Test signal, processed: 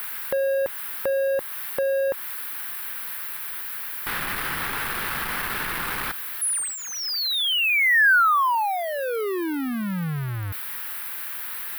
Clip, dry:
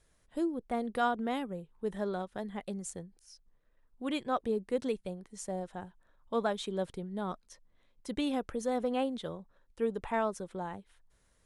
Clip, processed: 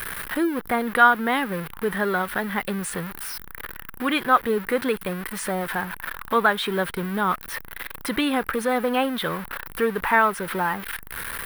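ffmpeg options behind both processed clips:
-filter_complex "[0:a]aeval=exprs='val(0)+0.5*0.00668*sgn(val(0))':c=same,equalizer=f=1.4k:w=0.32:g=15,acrossover=split=7500[a][b];[b]acompressor=threshold=-59dB:ratio=4:attack=1:release=60[c];[a][c]amix=inputs=2:normalize=0,equalizer=f=160:t=o:w=0.67:g=3,equalizer=f=630:t=o:w=0.67:g=-8,equalizer=f=1.6k:t=o:w=0.67:g=5,equalizer=f=6.3k:t=o:w=0.67:g=-5,asplit=2[d][e];[e]acompressor=threshold=-33dB:ratio=6,volume=1dB[f];[d][f]amix=inputs=2:normalize=0,aexciter=amount=13.6:drive=4.5:freq=9.8k"

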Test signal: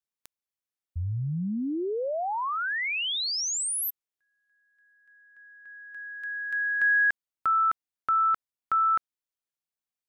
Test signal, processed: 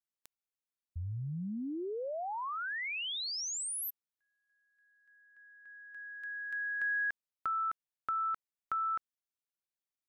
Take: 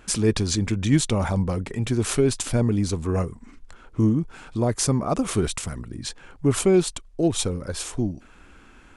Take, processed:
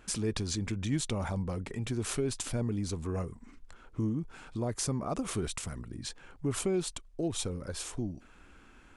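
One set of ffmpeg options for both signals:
-af "acompressor=threshold=-35dB:ratio=1.5:attack=38:release=44:knee=6:detection=peak,volume=-6.5dB"

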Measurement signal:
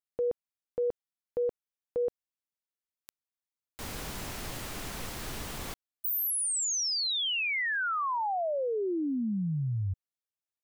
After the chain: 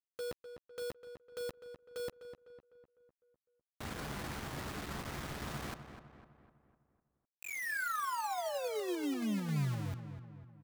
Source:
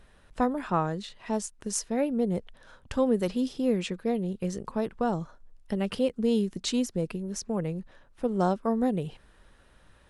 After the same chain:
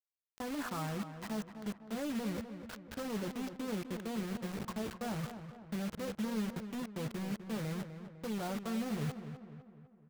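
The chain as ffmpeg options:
-filter_complex "[0:a]aresample=16000,aresample=44100,asoftclip=type=tanh:threshold=-23.5dB,areverse,acompressor=threshold=-43dB:ratio=10:attack=1.4:release=48:knee=1:detection=rms,areverse,highpass=f=160:p=1,highshelf=f=2.4k:t=q:w=1.5:g=-10,asplit=2[a][b];[b]adelay=14,volume=-8dB[c];[a][c]amix=inputs=2:normalize=0,agate=range=-7dB:threshold=-51dB:ratio=3:release=47:detection=peak,bass=f=250:g=9,treble=f=4k:g=-12,acrusher=bits=7:mix=0:aa=0.000001,asplit=2[d][e];[e]adelay=252,lowpass=f=2.4k:p=1,volume=-9.5dB,asplit=2[f][g];[g]adelay=252,lowpass=f=2.4k:p=1,volume=0.51,asplit=2[h][i];[i]adelay=252,lowpass=f=2.4k:p=1,volume=0.51,asplit=2[j][k];[k]adelay=252,lowpass=f=2.4k:p=1,volume=0.51,asplit=2[l][m];[m]adelay=252,lowpass=f=2.4k:p=1,volume=0.51,asplit=2[n][o];[o]adelay=252,lowpass=f=2.4k:p=1,volume=0.51[p];[d][f][h][j][l][n][p]amix=inputs=7:normalize=0,volume=4.5dB"

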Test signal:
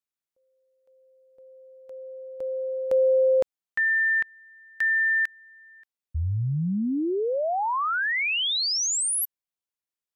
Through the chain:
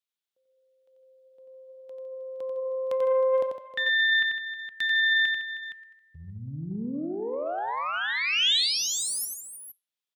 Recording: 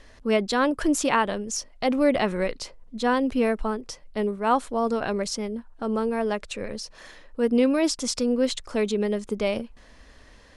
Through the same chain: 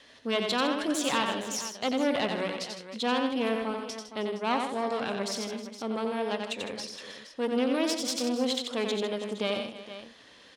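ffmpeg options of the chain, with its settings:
-filter_complex "[0:a]flanger=delay=6.7:depth=4.5:regen=-89:speed=0.48:shape=triangular,adynamicequalizer=threshold=0.00316:dfrequency=380:dqfactor=6.7:tfrequency=380:tqfactor=6.7:attack=5:release=100:ratio=0.375:range=2:mode=cutabove:tftype=bell,aeval=exprs='(tanh(12.6*val(0)+0.7)-tanh(0.7))/12.6':c=same,aecho=1:1:90|157|314|466:0.562|0.266|0.15|0.188,asplit=2[a][b];[b]acompressor=threshold=-37dB:ratio=6:attack=0.54:release=906:knee=6:detection=peak,volume=-1.5dB[c];[a][c]amix=inputs=2:normalize=0,highpass=170,equalizer=f=3.4k:w=1.7:g=9.5"

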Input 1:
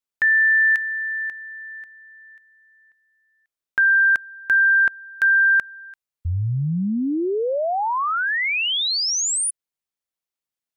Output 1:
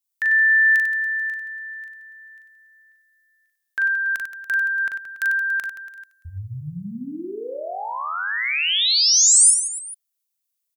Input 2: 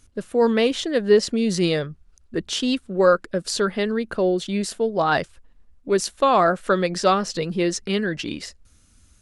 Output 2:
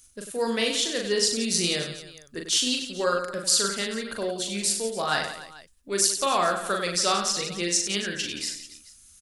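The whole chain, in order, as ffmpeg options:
-af "aecho=1:1:40|96|174.4|284.2|437.8:0.631|0.398|0.251|0.158|0.1,crystalizer=i=8:c=0,volume=-12dB"

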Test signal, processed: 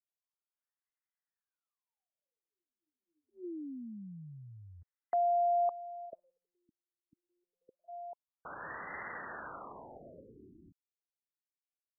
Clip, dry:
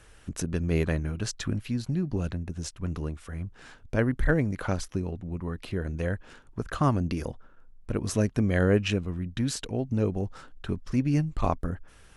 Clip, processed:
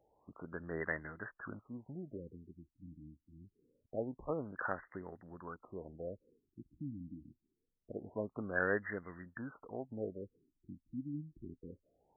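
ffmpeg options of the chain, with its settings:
-af "aderivative,afftfilt=real='re*lt(b*sr/1024,310*pow(2100/310,0.5+0.5*sin(2*PI*0.25*pts/sr)))':imag='im*lt(b*sr/1024,310*pow(2100/310,0.5+0.5*sin(2*PI*0.25*pts/sr)))':win_size=1024:overlap=0.75,volume=13dB"

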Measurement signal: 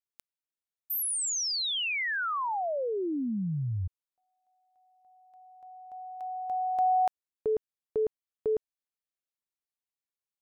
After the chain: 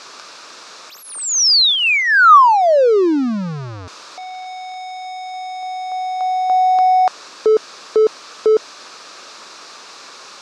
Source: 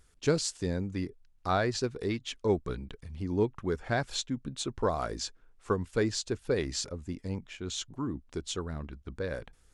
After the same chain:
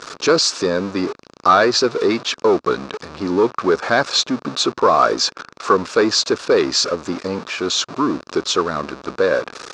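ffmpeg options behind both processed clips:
-af "aeval=exprs='val(0)+0.5*0.01*sgn(val(0))':c=same,apsyclip=25.5dB,highpass=370,equalizer=f=770:t=q:w=4:g=-4,equalizer=f=1.2k:t=q:w=4:g=6,equalizer=f=2k:t=q:w=4:g=-8,equalizer=f=3.1k:t=q:w=4:g=-8,lowpass=f=5.6k:w=0.5412,lowpass=f=5.6k:w=1.3066,volume=-6dB"

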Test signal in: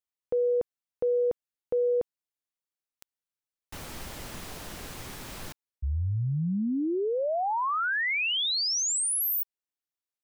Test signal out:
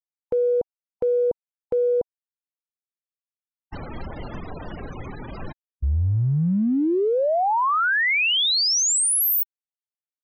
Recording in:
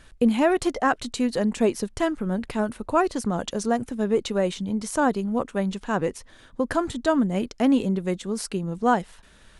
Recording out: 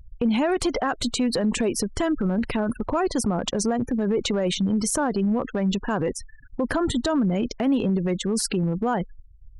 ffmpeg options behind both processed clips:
-af "afftfilt=real='re*gte(hypot(re,im),0.0126)':imag='im*gte(hypot(re,im),0.0126)':win_size=1024:overlap=0.75,acompressor=threshold=-27dB:ratio=6:attack=0.32:release=71:knee=1:detection=peak,volume=9dB"

